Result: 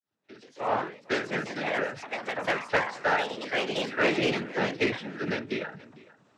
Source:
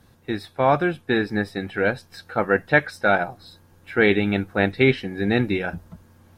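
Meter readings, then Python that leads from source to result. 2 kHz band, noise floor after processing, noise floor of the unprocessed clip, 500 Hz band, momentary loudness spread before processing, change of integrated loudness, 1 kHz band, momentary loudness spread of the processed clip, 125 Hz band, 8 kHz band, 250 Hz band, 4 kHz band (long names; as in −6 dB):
−6.0 dB, −65 dBFS, −56 dBFS, −7.5 dB, 12 LU, −7.0 dB, −5.0 dB, 8 LU, −13.0 dB, can't be measured, −10.0 dB, −1.0 dB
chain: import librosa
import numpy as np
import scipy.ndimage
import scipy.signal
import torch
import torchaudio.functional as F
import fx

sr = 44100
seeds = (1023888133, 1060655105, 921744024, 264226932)

y = fx.fade_in_head(x, sr, length_s=1.31)
y = fx.highpass(y, sr, hz=370.0, slope=6)
y = fx.high_shelf(y, sr, hz=4800.0, db=-5.5)
y = fx.noise_vocoder(y, sr, seeds[0], bands=12)
y = 10.0 ** (-13.0 / 20.0) * np.tanh(y / 10.0 ** (-13.0 / 20.0))
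y = fx.echo_pitch(y, sr, ms=176, semitones=3, count=2, db_per_echo=-3.0)
y = y + 10.0 ** (-21.5 / 20.0) * np.pad(y, (int(453 * sr / 1000.0), 0))[:len(y)]
y = fx.end_taper(y, sr, db_per_s=120.0)
y = y * 10.0 ** (-3.0 / 20.0)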